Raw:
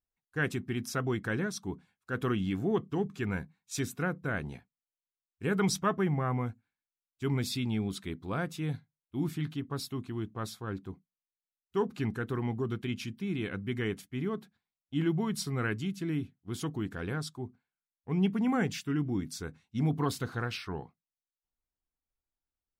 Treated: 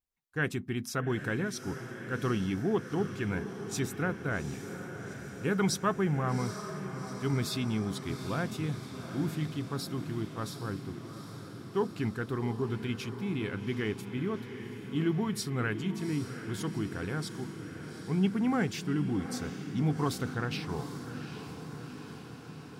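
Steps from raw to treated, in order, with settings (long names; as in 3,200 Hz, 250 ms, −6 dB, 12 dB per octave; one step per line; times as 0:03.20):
feedback delay with all-pass diffusion 789 ms, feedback 68%, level −10 dB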